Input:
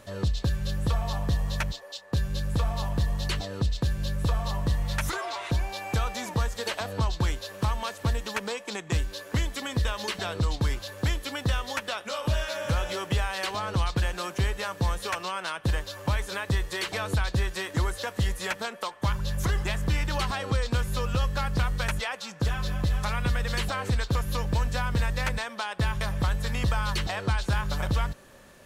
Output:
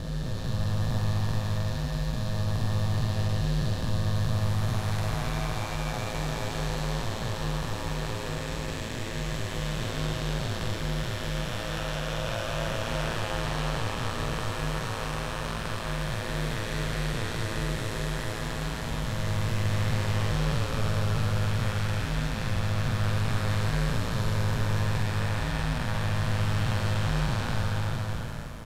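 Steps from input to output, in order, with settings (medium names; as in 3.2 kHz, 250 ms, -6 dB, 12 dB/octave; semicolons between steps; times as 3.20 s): spectral blur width 1100 ms; ring modulator 56 Hz; doubling 46 ms -5 dB; trim +5 dB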